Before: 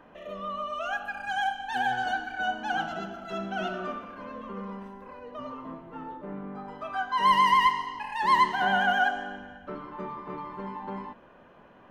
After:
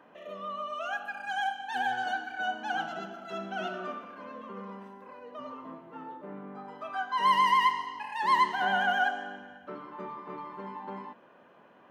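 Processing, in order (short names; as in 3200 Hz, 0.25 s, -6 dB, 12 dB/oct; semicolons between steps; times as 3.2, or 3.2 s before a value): Bessel high-pass 210 Hz, order 2; gain -2.5 dB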